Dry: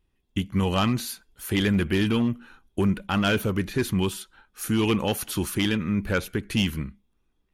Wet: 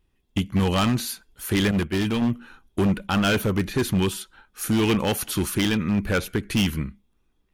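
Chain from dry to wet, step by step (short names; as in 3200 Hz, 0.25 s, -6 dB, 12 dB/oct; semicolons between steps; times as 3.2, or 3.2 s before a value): wavefolder -18 dBFS; 1.71–2.22 expander -20 dBFS; gain +3 dB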